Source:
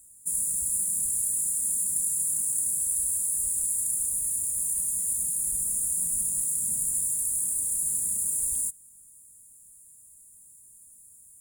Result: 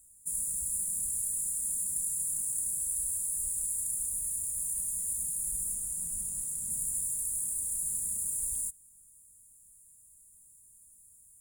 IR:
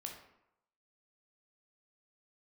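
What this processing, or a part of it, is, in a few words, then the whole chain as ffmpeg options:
low shelf boost with a cut just above: -filter_complex "[0:a]asettb=1/sr,asplit=3[s0][s1][s2];[s0]atrim=end=5.744[s3];[s1]atrim=start=5.74:end=6.7,asetpts=PTS-STARTPTS,afade=t=in:d=0.004:c=qsin,afade=t=out:st=0.956:d=0.004:c=qsin,highshelf=f=9200:g=-4.5[s4];[s2]atrim=start=6.696[s5];[s3][s4]acrossfade=d=0.004:c1=hsin:c2=qsin[s6];[s6][s5]acrossfade=d=0.004:c1=qsin:c2=hsin,lowshelf=f=73:g=7.5,equalizer=f=320:t=o:w=0.7:g=-3.5,volume=0.531"

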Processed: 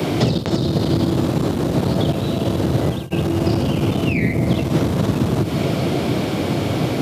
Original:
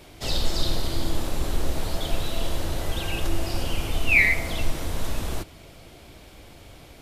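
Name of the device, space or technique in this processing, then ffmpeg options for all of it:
mastering chain: -filter_complex "[0:a]highpass=f=41:p=1,equalizer=f=1200:t=o:w=0.7:g=3,acrossover=split=140|520[s0][s1][s2];[s0]acompressor=threshold=0.0316:ratio=4[s3];[s1]acompressor=threshold=0.00891:ratio=4[s4];[s2]acompressor=threshold=0.00794:ratio=4[s5];[s3][s4][s5]amix=inputs=3:normalize=0,acompressor=threshold=0.02:ratio=2.5,asoftclip=type=tanh:threshold=0.0316,tiltshelf=f=650:g=9,asoftclip=type=hard:threshold=0.0596,alimiter=level_in=31.6:limit=0.891:release=50:level=0:latency=1,highpass=f=120:w=0.5412,highpass=f=120:w=1.3066,acrossover=split=5200[s6][s7];[s7]acompressor=threshold=0.00398:ratio=4:attack=1:release=60[s8];[s6][s8]amix=inputs=2:normalize=0,highshelf=f=3800:g=9.5,volume=0.631"

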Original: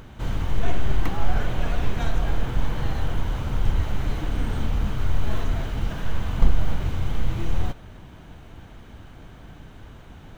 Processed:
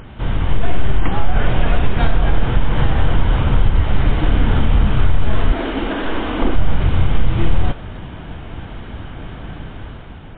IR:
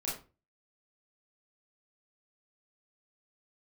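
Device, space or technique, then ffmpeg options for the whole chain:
low-bitrate web radio: -filter_complex "[0:a]asettb=1/sr,asplit=3[s0][s1][s2];[s0]atrim=end=5.524[s3];[s1]atrim=start=5.52:end=6.55,asetpts=PTS-STARTPTS,afade=t=in:d=0.004:c=qsin,afade=t=out:st=1.026:d=0.004:c=qsin,lowshelf=f=200:t=q:w=3:g=-12.5[s4];[s2]atrim=start=6.546[s5];[s3][s4]acrossfade=d=0.004:c1=hsin:c2=qsin[s6];[s6][s5]acrossfade=d=0.004:c1=qsin:c2=hsin,dynaudnorm=f=150:g=9:m=2,alimiter=limit=0.299:level=0:latency=1:release=171,volume=2.37" -ar 8000 -c:a libmp3lame -b:a 24k

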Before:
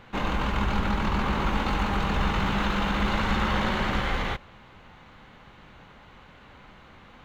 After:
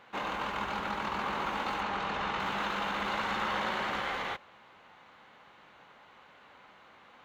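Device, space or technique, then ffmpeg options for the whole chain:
filter by subtraction: -filter_complex "[0:a]asettb=1/sr,asplit=3[s0][s1][s2];[s0]atrim=end=1.814[s3];[s1]atrim=start=1.81:end=2.4,asetpts=PTS-STARTPTS,afade=t=in:d=0.004:c=qsin,afade=t=out:st=0.586:d=0.004:c=qsin,lowpass=6500[s4];[s2]atrim=start=2.396[s5];[s3][s4]acrossfade=d=0.004:c1=hsin:c2=qsin[s6];[s6][s5]acrossfade=d=0.004:c1=qsin:c2=hsin,asplit=2[s7][s8];[s8]lowpass=750,volume=-1[s9];[s7][s9]amix=inputs=2:normalize=0,volume=0.531"

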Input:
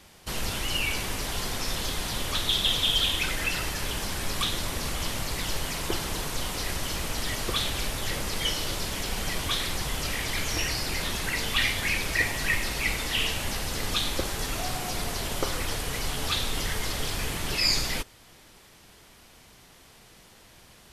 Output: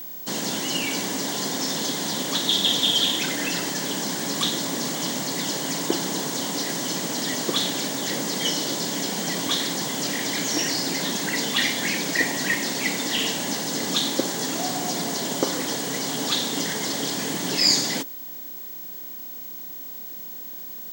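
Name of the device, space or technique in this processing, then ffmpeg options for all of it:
old television with a line whistle: -af "highpass=f=170:w=0.5412,highpass=f=170:w=1.3066,equalizer=f=180:t=q:w=4:g=4,equalizer=f=280:t=q:w=4:g=8,equalizer=f=1300:t=q:w=4:g=-8,equalizer=f=2500:t=q:w=4:g=-10,equalizer=f=6700:t=q:w=4:g=5,lowpass=f=8900:w=0.5412,lowpass=f=8900:w=1.3066,aeval=exprs='val(0)+0.0112*sin(2*PI*15734*n/s)':c=same,volume=1.88"

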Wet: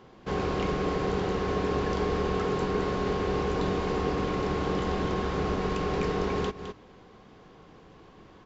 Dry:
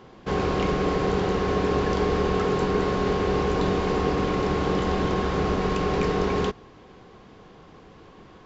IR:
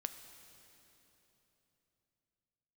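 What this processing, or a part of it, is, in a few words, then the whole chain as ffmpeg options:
ducked delay: -filter_complex "[0:a]asplit=3[s0][s1][s2];[s1]adelay=211,volume=0.398[s3];[s2]apad=whole_len=382347[s4];[s3][s4]sidechaincompress=threshold=0.02:ratio=8:attack=9:release=175[s5];[s0][s5]amix=inputs=2:normalize=0,volume=0.596"

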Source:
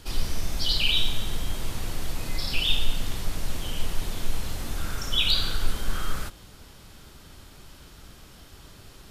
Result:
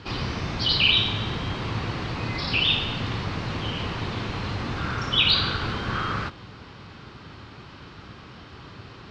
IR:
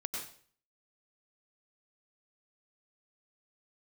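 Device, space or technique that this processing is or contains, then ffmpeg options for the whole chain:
guitar cabinet: -af "highpass=99,equalizer=f=110:t=q:w=4:g=6,equalizer=f=620:t=q:w=4:g=-4,equalizer=f=1100:t=q:w=4:g=4,equalizer=f=3400:t=q:w=4:g=-5,lowpass=f=4100:w=0.5412,lowpass=f=4100:w=1.3066,volume=2.51"

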